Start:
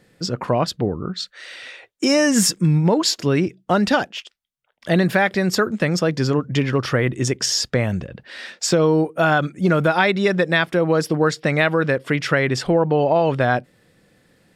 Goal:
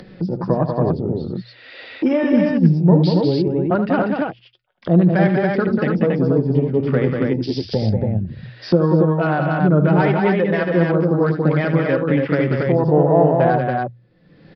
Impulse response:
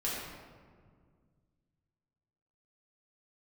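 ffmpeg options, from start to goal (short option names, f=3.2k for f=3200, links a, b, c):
-filter_complex "[0:a]flanger=delay=5.3:depth=6.8:regen=48:speed=0.22:shape=sinusoidal,afwtdn=0.0447,tiltshelf=f=670:g=4.5,acrossover=split=120|1200[a][b][c];[c]asoftclip=type=hard:threshold=-26.5dB[d];[a][b][d]amix=inputs=3:normalize=0,bandreject=f=60:t=h:w=6,bandreject=f=120:t=h:w=6,asplit=2[e][f];[f]aecho=0:1:75.8|189.5|279.9:0.316|0.562|0.708[g];[e][g]amix=inputs=2:normalize=0,aresample=11025,aresample=44100,acompressor=mode=upward:threshold=-19dB:ratio=2.5,volume=2dB"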